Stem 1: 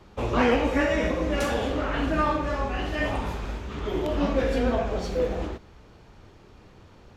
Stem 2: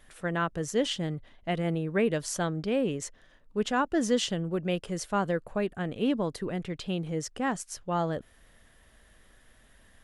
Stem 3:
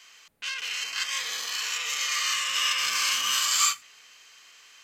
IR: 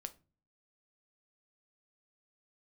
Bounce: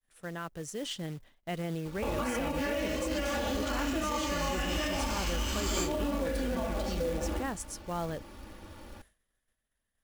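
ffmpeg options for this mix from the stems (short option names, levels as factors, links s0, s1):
-filter_complex "[0:a]bandreject=f=60:t=h:w=6,bandreject=f=120:t=h:w=6,bandreject=f=180:t=h:w=6,bandreject=f=240:t=h:w=6,bandreject=f=300:t=h:w=6,bandreject=f=360:t=h:w=6,bandreject=f=420:t=h:w=6,bandreject=f=480:t=h:w=6,bandreject=f=540:t=h:w=6,bandreject=f=600:t=h:w=6,aecho=1:1:3.5:0.81,acompressor=threshold=0.0316:ratio=2,adelay=1850,volume=0.794[s0];[1:a]highshelf=f=7800:g=8.5,alimiter=limit=0.0891:level=0:latency=1:release=15,volume=0.355[s1];[2:a]adelay=2150,volume=0.141[s2];[s0][s1]amix=inputs=2:normalize=0,agate=range=0.0224:threshold=0.002:ratio=3:detection=peak,alimiter=level_in=1.5:limit=0.0631:level=0:latency=1:release=70,volume=0.668,volume=1[s3];[s2][s3]amix=inputs=2:normalize=0,dynaudnorm=f=240:g=7:m=1.5,acrusher=bits=4:mode=log:mix=0:aa=0.000001"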